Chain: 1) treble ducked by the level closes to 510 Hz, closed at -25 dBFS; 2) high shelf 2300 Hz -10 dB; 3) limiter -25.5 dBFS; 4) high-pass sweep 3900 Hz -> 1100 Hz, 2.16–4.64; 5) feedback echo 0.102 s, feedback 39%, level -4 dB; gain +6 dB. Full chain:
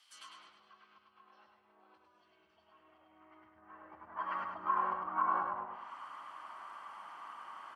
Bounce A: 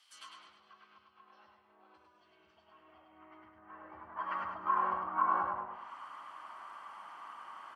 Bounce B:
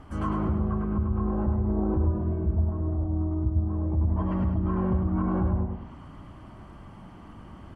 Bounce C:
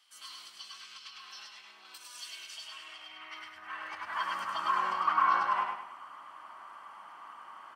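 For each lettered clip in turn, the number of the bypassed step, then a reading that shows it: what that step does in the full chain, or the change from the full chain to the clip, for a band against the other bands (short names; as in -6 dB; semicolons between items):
3, mean gain reduction 2.0 dB; 4, 250 Hz band +31.5 dB; 1, 2 kHz band +9.0 dB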